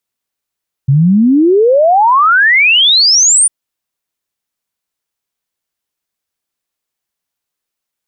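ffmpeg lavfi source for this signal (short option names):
-f lavfi -i "aevalsrc='0.562*clip(min(t,2.6-t)/0.01,0,1)*sin(2*PI*130*2.6/log(9500/130)*(exp(log(9500/130)*t/2.6)-1))':d=2.6:s=44100"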